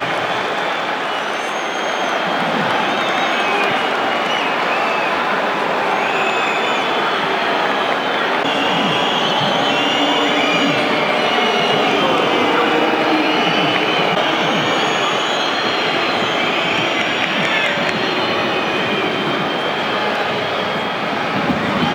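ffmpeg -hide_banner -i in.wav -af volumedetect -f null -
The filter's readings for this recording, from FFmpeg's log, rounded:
mean_volume: -17.1 dB
max_volume: -1.2 dB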